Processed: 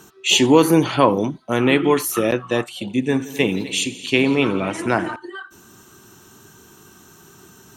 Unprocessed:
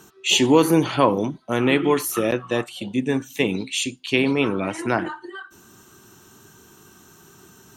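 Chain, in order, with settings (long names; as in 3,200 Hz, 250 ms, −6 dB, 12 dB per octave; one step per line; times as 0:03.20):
0:02.79–0:05.16: echo machine with several playback heads 85 ms, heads all three, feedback 40%, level −19.5 dB
level +2.5 dB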